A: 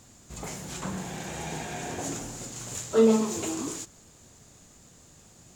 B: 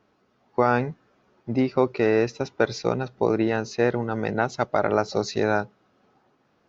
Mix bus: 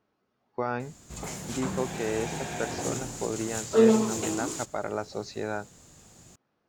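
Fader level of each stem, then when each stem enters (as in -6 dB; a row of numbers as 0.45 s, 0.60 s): +0.5 dB, -10.0 dB; 0.80 s, 0.00 s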